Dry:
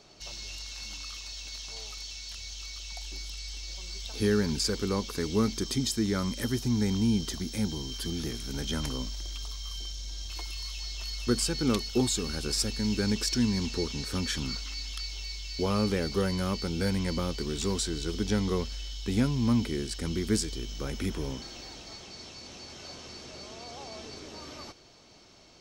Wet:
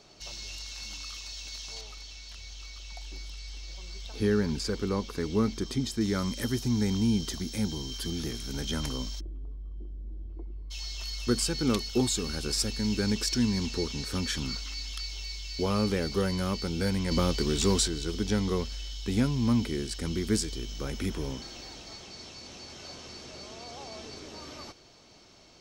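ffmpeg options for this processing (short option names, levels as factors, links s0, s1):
-filter_complex "[0:a]asettb=1/sr,asplit=3[s0][s1][s2];[s0]atrim=end=1.814[s3];[s1]atrim=start=1.81:end=6.01,asetpts=PTS-STARTPTS,afade=t=in:d=0.004:c=qsin,afade=t=out:st=4.196:d=0.004:c=qsin,highshelf=f=3900:g=-9.5[s4];[s2]atrim=start=6.006[s5];[s3][s4]acrossfade=d=0.004:c1=hsin:c2=qsin[s6];[s6][s5]acrossfade=d=0.004:c1=qsin:c2=hsin,asplit=3[s7][s8][s9];[s7]afade=t=out:st=9.19:d=0.02[s10];[s8]lowpass=f=330:t=q:w=2.3,afade=t=in:st=9.19:d=0.02,afade=t=out:st=10.7:d=0.02[s11];[s9]afade=t=in:st=10.7:d=0.02[s12];[s10][s11][s12]amix=inputs=3:normalize=0,asettb=1/sr,asplit=3[s13][s14][s15];[s13]atrim=end=17.114[s16];[s14]atrim=start=17.11:end=17.88,asetpts=PTS-STARTPTS,afade=t=in:d=0.004:c=qsin,afade=t=out:st=0.766:d=0.004:c=qsin,acontrast=26[s17];[s15]atrim=start=17.876[s18];[s16][s17]acrossfade=d=0.004:c1=hsin:c2=qsin[s19];[s19][s18]acrossfade=d=0.004:c1=qsin:c2=hsin"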